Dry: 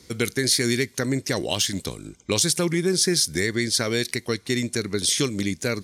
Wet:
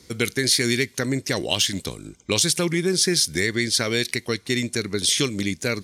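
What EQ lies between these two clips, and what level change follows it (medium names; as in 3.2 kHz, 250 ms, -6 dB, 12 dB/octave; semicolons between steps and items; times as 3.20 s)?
dynamic bell 2.8 kHz, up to +5 dB, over -37 dBFS, Q 1.3; 0.0 dB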